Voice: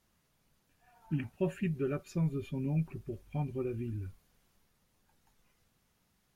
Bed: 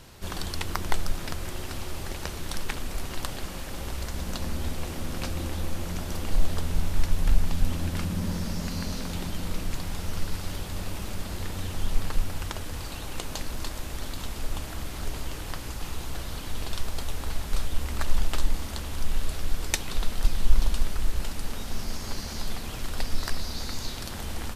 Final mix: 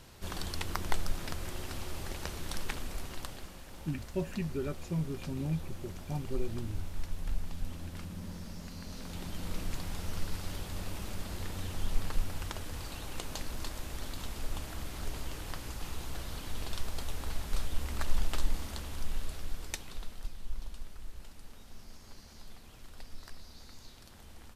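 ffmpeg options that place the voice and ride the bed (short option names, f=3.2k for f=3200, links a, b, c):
-filter_complex "[0:a]adelay=2750,volume=-2dB[a];[1:a]volume=2.5dB,afade=t=out:st=2.7:d=0.88:silence=0.398107,afade=t=in:st=8.82:d=0.78:silence=0.421697,afade=t=out:st=18.56:d=1.79:silence=0.223872[b];[a][b]amix=inputs=2:normalize=0"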